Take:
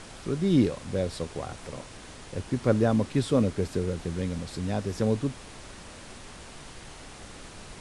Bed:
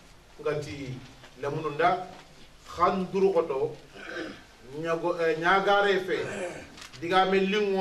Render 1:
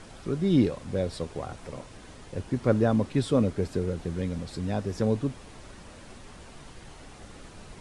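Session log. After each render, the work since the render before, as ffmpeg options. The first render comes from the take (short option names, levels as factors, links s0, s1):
-af "afftdn=nr=6:nf=-46"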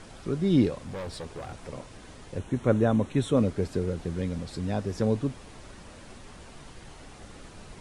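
-filter_complex "[0:a]asettb=1/sr,asplit=3[s0][s1][s2];[s0]atrim=end=0.784[s3];[s1]atrim=start=0.78:end=1.53,asetpts=PTS-STARTPTS,afade=t=in:d=0.004:c=qsin,afade=t=out:st=0.746:d=0.004:c=qsin,volume=44.7,asoftclip=hard,volume=0.0224[s4];[s2]atrim=start=1.526[s5];[s3][s4]acrossfade=d=0.004:c1=hsin:c2=qsin[s6];[s6][s5]acrossfade=d=0.004:c1=qsin:c2=hsin,asettb=1/sr,asplit=3[s7][s8][s9];[s7]atrim=end=2.384[s10];[s8]atrim=start=2.38:end=3.37,asetpts=PTS-STARTPTS,afade=t=in:d=0.004:c=qsin,afade=t=out:st=0.986:d=0.004:c=qsin,asuperstop=centerf=4800:order=4:qfactor=3.4[s11];[s9]atrim=start=3.366[s12];[s10][s11]acrossfade=d=0.004:c1=hsin:c2=qsin[s13];[s13][s12]acrossfade=d=0.004:c1=qsin:c2=hsin"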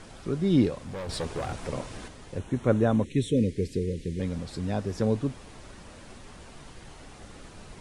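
-filter_complex "[0:a]asettb=1/sr,asplit=3[s0][s1][s2];[s0]atrim=end=3.044[s3];[s1]atrim=start=3.04:end=4.2,asetpts=PTS-STARTPTS,afade=t=in:d=0.004:c=qsin,afade=t=out:st=1.156:d=0.004:c=qsin,asuperstop=centerf=980:order=12:qfactor=0.73[s4];[s2]atrim=start=4.196[s5];[s3][s4]acrossfade=d=0.004:c1=hsin:c2=qsin[s6];[s6][s5]acrossfade=d=0.004:c1=qsin:c2=hsin,asplit=3[s7][s8][s9];[s7]atrim=end=1.092[s10];[s8]atrim=start=1.088:end=2.082,asetpts=PTS-STARTPTS,volume=2.11[s11];[s9]atrim=start=2.078[s12];[s10][s11]acrossfade=d=0.004:c1=hsin:c2=hsin[s13];[s13][s12]acrossfade=d=0.004:c1=hsin:c2=hsin"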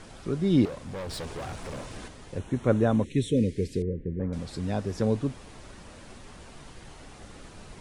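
-filter_complex "[0:a]asettb=1/sr,asplit=3[s0][s1][s2];[s0]atrim=end=0.654[s3];[s1]atrim=start=0.65:end=1.96,asetpts=PTS-STARTPTS,afade=t=in:d=0.004:c=qsin,afade=t=out:st=1.306:d=0.004:c=qsin,asoftclip=type=hard:threshold=0.0224[s4];[s2]atrim=start=1.956[s5];[s3][s4]acrossfade=d=0.004:c1=hsin:c2=qsin[s6];[s6][s5]acrossfade=d=0.004:c1=qsin:c2=hsin,asettb=1/sr,asplit=3[s7][s8][s9];[s7]atrim=end=3.824[s10];[s8]atrim=start=3.82:end=4.33,asetpts=PTS-STARTPTS,afade=t=in:d=0.004:c=qsin,afade=t=out:st=0.506:d=0.004:c=qsin,lowpass=f=1500:w=0.5412,lowpass=f=1500:w=1.3066[s11];[s9]atrim=start=4.326[s12];[s10][s11]acrossfade=d=0.004:c1=hsin:c2=qsin[s13];[s13][s12]acrossfade=d=0.004:c1=qsin:c2=hsin"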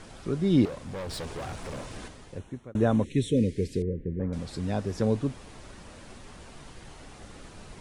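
-filter_complex "[0:a]asplit=2[s0][s1];[s0]atrim=end=2.75,asetpts=PTS-STARTPTS,afade=t=out:st=2.09:d=0.66[s2];[s1]atrim=start=2.75,asetpts=PTS-STARTPTS,afade=t=in:d=0.004:c=hsin[s3];[s2][s3]concat=n=2:v=0:a=1"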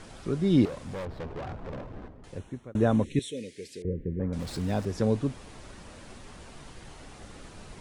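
-filter_complex "[0:a]asettb=1/sr,asplit=3[s0][s1][s2];[s0]atrim=end=1.054[s3];[s1]atrim=start=1.05:end=2.24,asetpts=PTS-STARTPTS,afade=t=in:d=0.004:c=qsin,afade=t=out:st=1.186:d=0.004:c=qsin,adynamicsmooth=sensitivity=4.5:basefreq=650[s4];[s2]atrim=start=2.236[s5];[s3][s4]acrossfade=d=0.004:c1=hsin:c2=qsin[s6];[s6][s5]acrossfade=d=0.004:c1=qsin:c2=hsin,asettb=1/sr,asplit=3[s7][s8][s9];[s7]atrim=end=3.194[s10];[s8]atrim=start=3.19:end=3.85,asetpts=PTS-STARTPTS,afade=t=in:d=0.004:c=qsin,afade=t=out:st=0.656:d=0.004:c=qsin,highpass=f=1400:p=1[s11];[s9]atrim=start=3.846[s12];[s10][s11]acrossfade=d=0.004:c1=hsin:c2=qsin[s13];[s13][s12]acrossfade=d=0.004:c1=qsin:c2=hsin,asettb=1/sr,asplit=3[s14][s15][s16];[s14]atrim=end=4.394[s17];[s15]atrim=start=4.39:end=4.85,asetpts=PTS-STARTPTS,afade=t=in:d=0.004:c=qsin,afade=t=out:st=0.456:d=0.004:c=qsin,aeval=exprs='val(0)+0.5*0.00841*sgn(val(0))':c=same[s18];[s16]atrim=start=4.846[s19];[s17][s18]acrossfade=d=0.004:c1=hsin:c2=qsin[s20];[s20][s19]acrossfade=d=0.004:c1=qsin:c2=hsin"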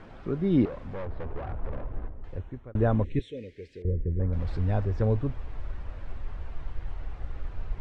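-af "lowpass=2100,asubboost=boost=10:cutoff=65"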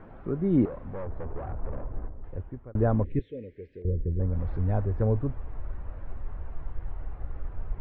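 -af "lowpass=1500"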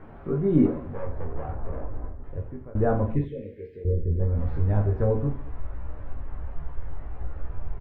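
-filter_complex "[0:a]asplit=2[s0][s1];[s1]adelay=13,volume=0.447[s2];[s0][s2]amix=inputs=2:normalize=0,aecho=1:1:20|48|87.2|142.1|218.9:0.631|0.398|0.251|0.158|0.1"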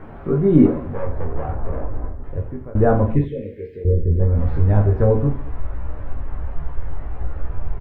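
-af "volume=2.37,alimiter=limit=0.891:level=0:latency=1"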